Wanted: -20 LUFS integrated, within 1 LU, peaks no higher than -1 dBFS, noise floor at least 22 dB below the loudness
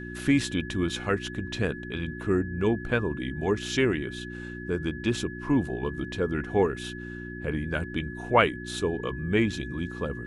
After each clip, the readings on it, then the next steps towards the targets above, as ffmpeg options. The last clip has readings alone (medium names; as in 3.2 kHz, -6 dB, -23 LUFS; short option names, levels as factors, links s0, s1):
hum 60 Hz; highest harmonic 360 Hz; hum level -36 dBFS; steady tone 1.7 kHz; tone level -41 dBFS; loudness -28.5 LUFS; peak level -7.0 dBFS; loudness target -20.0 LUFS
-> -af "bandreject=f=60:t=h:w=4,bandreject=f=120:t=h:w=4,bandreject=f=180:t=h:w=4,bandreject=f=240:t=h:w=4,bandreject=f=300:t=h:w=4,bandreject=f=360:t=h:w=4"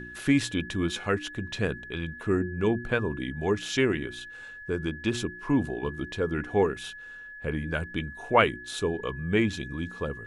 hum not found; steady tone 1.7 kHz; tone level -41 dBFS
-> -af "bandreject=f=1700:w=30"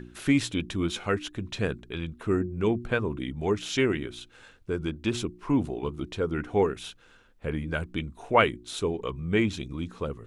steady tone not found; loudness -29.0 LUFS; peak level -7.0 dBFS; loudness target -20.0 LUFS
-> -af "volume=2.82,alimiter=limit=0.891:level=0:latency=1"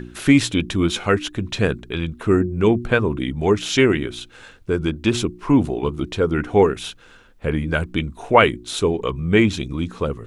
loudness -20.0 LUFS; peak level -1.0 dBFS; noise floor -48 dBFS